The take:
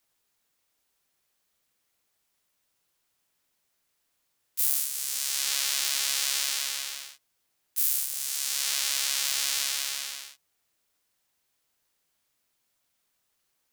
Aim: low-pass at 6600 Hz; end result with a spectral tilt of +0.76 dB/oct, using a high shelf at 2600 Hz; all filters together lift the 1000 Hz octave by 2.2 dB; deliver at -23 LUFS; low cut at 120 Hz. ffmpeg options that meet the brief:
-af "highpass=120,lowpass=6.6k,equalizer=f=1k:t=o:g=4,highshelf=f=2.6k:g=-6,volume=11dB"

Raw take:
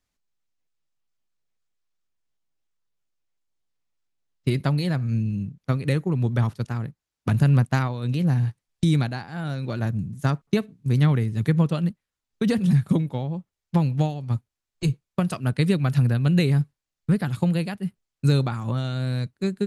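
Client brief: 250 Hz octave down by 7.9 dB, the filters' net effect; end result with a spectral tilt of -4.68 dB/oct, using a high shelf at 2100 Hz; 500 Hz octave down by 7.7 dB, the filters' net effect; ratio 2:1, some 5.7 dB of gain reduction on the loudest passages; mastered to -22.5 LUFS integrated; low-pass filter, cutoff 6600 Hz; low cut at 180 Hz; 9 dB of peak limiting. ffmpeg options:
-af "highpass=180,lowpass=6.6k,equalizer=f=250:t=o:g=-7,equalizer=f=500:t=o:g=-8,highshelf=f=2.1k:g=8.5,acompressor=threshold=-32dB:ratio=2,volume=13.5dB,alimiter=limit=-9dB:level=0:latency=1"

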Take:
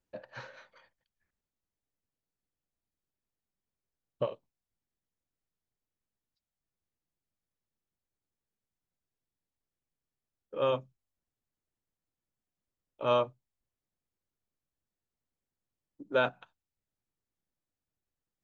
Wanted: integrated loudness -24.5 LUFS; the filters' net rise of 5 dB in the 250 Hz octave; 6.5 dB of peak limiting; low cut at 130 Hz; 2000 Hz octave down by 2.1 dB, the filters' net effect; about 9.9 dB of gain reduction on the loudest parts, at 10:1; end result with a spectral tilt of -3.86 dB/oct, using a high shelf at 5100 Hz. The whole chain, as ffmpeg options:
-af "highpass=130,equalizer=f=250:t=o:g=6,equalizer=f=2k:t=o:g=-4.5,highshelf=f=5.1k:g=6.5,acompressor=threshold=-31dB:ratio=10,volume=18dB,alimiter=limit=-10dB:level=0:latency=1"

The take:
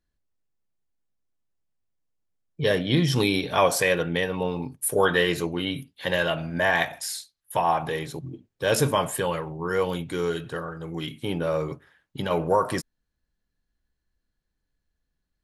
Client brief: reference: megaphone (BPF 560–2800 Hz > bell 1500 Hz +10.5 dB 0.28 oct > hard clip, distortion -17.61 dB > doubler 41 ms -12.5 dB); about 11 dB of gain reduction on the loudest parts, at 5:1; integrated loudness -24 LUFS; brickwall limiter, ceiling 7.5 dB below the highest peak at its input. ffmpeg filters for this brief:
-filter_complex "[0:a]acompressor=threshold=-28dB:ratio=5,alimiter=limit=-21.5dB:level=0:latency=1,highpass=560,lowpass=2.8k,equalizer=f=1.5k:t=o:w=0.28:g=10.5,asoftclip=type=hard:threshold=-26.5dB,asplit=2[a][b];[b]adelay=41,volume=-12.5dB[c];[a][c]amix=inputs=2:normalize=0,volume=12dB"

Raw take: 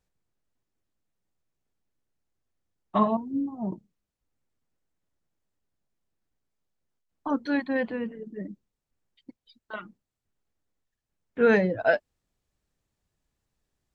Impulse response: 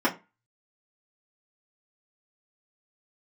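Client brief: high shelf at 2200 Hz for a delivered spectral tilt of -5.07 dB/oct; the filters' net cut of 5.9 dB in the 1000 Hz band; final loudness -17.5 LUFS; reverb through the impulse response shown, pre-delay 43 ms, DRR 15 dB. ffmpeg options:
-filter_complex "[0:a]equalizer=f=1k:t=o:g=-9,highshelf=f=2.2k:g=5,asplit=2[a][b];[1:a]atrim=start_sample=2205,adelay=43[c];[b][c]afir=irnorm=-1:irlink=0,volume=-29dB[d];[a][d]amix=inputs=2:normalize=0,volume=10.5dB"

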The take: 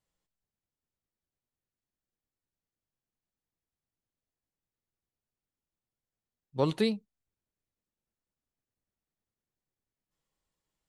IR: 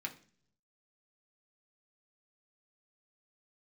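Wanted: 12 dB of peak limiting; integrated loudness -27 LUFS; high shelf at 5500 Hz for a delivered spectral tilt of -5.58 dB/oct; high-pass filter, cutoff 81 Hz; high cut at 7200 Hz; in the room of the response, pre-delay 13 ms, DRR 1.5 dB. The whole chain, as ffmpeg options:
-filter_complex "[0:a]highpass=81,lowpass=7.2k,highshelf=f=5.5k:g=-5.5,alimiter=level_in=1dB:limit=-24dB:level=0:latency=1,volume=-1dB,asplit=2[a][b];[1:a]atrim=start_sample=2205,adelay=13[c];[b][c]afir=irnorm=-1:irlink=0,volume=-2dB[d];[a][d]amix=inputs=2:normalize=0,volume=10dB"

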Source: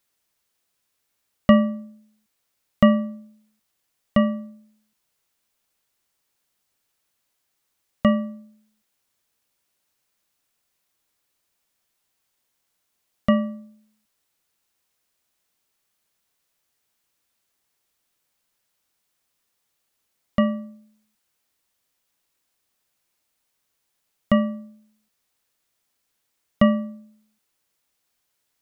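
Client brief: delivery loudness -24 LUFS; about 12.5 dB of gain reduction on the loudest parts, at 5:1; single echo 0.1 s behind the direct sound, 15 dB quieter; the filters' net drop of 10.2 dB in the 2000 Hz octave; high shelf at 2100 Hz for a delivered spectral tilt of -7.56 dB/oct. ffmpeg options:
-af "equalizer=f=2k:t=o:g=-6.5,highshelf=f=2.1k:g=-8.5,acompressor=threshold=-24dB:ratio=5,aecho=1:1:100:0.178,volume=8.5dB"

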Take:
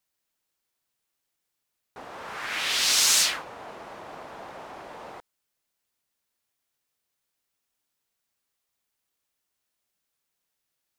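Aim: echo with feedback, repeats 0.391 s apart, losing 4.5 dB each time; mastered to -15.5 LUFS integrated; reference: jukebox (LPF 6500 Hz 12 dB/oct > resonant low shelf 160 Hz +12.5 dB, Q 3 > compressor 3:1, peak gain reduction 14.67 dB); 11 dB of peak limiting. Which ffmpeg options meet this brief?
-af "alimiter=limit=-18.5dB:level=0:latency=1,lowpass=6.5k,lowshelf=f=160:t=q:w=3:g=12.5,aecho=1:1:391|782|1173|1564|1955|2346|2737|3128|3519:0.596|0.357|0.214|0.129|0.0772|0.0463|0.0278|0.0167|0.01,acompressor=threshold=-45dB:ratio=3,volume=28.5dB"

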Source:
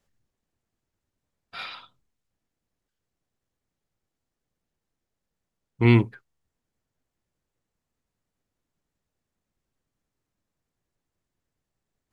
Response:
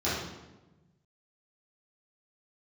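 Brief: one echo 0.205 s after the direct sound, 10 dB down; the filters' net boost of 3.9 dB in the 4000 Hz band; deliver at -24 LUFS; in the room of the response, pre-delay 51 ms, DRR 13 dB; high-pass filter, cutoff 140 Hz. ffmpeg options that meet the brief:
-filter_complex "[0:a]highpass=140,equalizer=f=4k:t=o:g=5,aecho=1:1:205:0.316,asplit=2[a][b];[1:a]atrim=start_sample=2205,adelay=51[c];[b][c]afir=irnorm=-1:irlink=0,volume=-24dB[d];[a][d]amix=inputs=2:normalize=0,volume=1dB"

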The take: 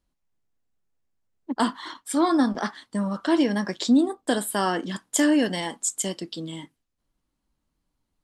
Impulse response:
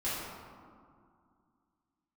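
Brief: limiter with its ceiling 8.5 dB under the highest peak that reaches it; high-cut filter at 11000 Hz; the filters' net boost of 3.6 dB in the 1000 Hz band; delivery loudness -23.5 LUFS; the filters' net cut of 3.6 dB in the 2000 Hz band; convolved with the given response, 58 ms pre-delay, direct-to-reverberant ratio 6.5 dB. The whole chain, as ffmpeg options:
-filter_complex "[0:a]lowpass=11k,equalizer=f=1k:t=o:g=6,equalizer=f=2k:t=o:g=-7,alimiter=limit=-15.5dB:level=0:latency=1,asplit=2[a][b];[1:a]atrim=start_sample=2205,adelay=58[c];[b][c]afir=irnorm=-1:irlink=0,volume=-13.5dB[d];[a][d]amix=inputs=2:normalize=0,volume=2.5dB"

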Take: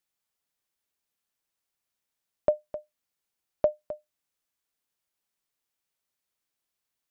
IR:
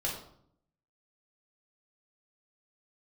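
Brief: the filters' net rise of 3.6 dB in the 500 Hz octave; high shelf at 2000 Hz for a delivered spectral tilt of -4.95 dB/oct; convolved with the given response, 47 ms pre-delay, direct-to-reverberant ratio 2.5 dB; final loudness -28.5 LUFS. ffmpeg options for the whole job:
-filter_complex "[0:a]equalizer=f=500:t=o:g=5.5,highshelf=f=2k:g=-8.5,asplit=2[a][b];[1:a]atrim=start_sample=2205,adelay=47[c];[b][c]afir=irnorm=-1:irlink=0,volume=-7dB[d];[a][d]amix=inputs=2:normalize=0,volume=-2dB"

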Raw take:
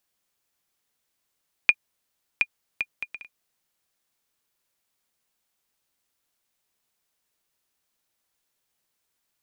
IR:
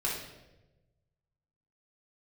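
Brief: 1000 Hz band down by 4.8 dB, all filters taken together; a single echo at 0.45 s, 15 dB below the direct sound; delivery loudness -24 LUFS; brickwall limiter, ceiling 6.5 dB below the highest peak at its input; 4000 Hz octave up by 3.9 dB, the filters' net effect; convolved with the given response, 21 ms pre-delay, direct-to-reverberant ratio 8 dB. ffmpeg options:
-filter_complex "[0:a]equalizer=f=1k:t=o:g=-7,equalizer=f=4k:t=o:g=6.5,alimiter=limit=-9dB:level=0:latency=1,aecho=1:1:450:0.178,asplit=2[a][b];[1:a]atrim=start_sample=2205,adelay=21[c];[b][c]afir=irnorm=-1:irlink=0,volume=-14.5dB[d];[a][d]amix=inputs=2:normalize=0,volume=7.5dB"

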